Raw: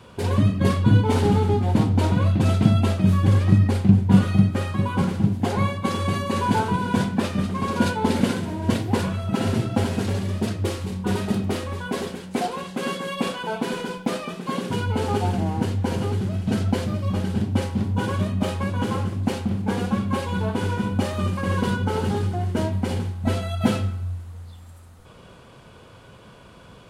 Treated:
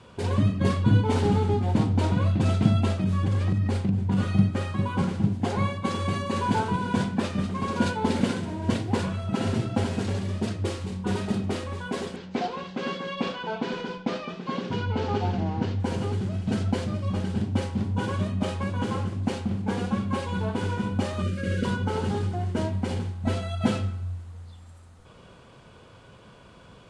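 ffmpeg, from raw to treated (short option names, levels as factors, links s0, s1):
-filter_complex "[0:a]asplit=3[s0][s1][s2];[s0]afade=t=out:st=2.94:d=0.02[s3];[s1]acompressor=threshold=0.158:ratio=6:attack=3.2:release=140:knee=1:detection=peak,afade=t=in:st=2.94:d=0.02,afade=t=out:st=4.18:d=0.02[s4];[s2]afade=t=in:st=4.18:d=0.02[s5];[s3][s4][s5]amix=inputs=3:normalize=0,asettb=1/sr,asplit=3[s6][s7][s8];[s6]atrim=end=12.164[s9];[s7]atrim=start=12.16:end=15.8,asetpts=PTS-STARTPTS,afade=t=in:d=0.004:c=qsin,afade=t=out:st=3.636:d=0.004:c=qsin,lowpass=f=5600:w=0.5412,lowpass=f=5600:w=1.3066[s10];[s8]atrim=start=15.796[s11];[s9][s10]acrossfade=d=0.004:c1=hsin:c2=qsin[s12];[s12][s11]acrossfade=d=0.004:c1=qsin:c2=hsin,asettb=1/sr,asplit=3[s13][s14][s15];[s13]atrim=end=21.224[s16];[s14]atrim=start=21.22:end=21.65,asetpts=PTS-STARTPTS,afade=t=in:d=0.004:c=qsin,afade=t=out:st=0.426:d=0.004:c=qsin,asuperstop=centerf=900:order=12:qfactor=1.6[s17];[s15]atrim=start=21.646[s18];[s16][s17]acrossfade=d=0.004:c1=hsin:c2=qsin[s19];[s19][s18]acrossfade=d=0.004:c1=qsin:c2=hsin,lowpass=f=9300:w=0.5412,lowpass=f=9300:w=1.3066,volume=0.668"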